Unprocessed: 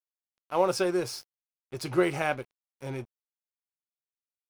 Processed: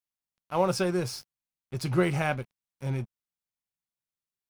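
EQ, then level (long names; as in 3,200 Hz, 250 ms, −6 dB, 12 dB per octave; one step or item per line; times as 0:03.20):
low shelf with overshoot 250 Hz +7 dB, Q 1.5
0.0 dB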